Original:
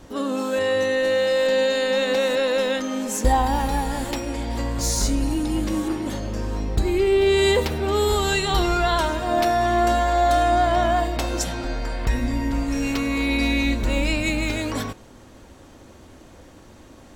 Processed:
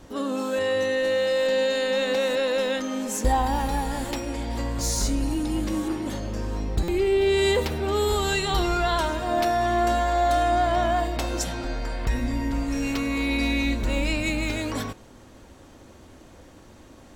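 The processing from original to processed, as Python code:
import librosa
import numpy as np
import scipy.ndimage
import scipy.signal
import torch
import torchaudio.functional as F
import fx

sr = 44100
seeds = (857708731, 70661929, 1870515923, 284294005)

p1 = 10.0 ** (-19.5 / 20.0) * np.tanh(x / 10.0 ** (-19.5 / 20.0))
p2 = x + (p1 * librosa.db_to_amplitude(-10.0))
p3 = fx.buffer_glitch(p2, sr, at_s=(6.83,), block=256, repeats=8)
y = p3 * librosa.db_to_amplitude(-4.5)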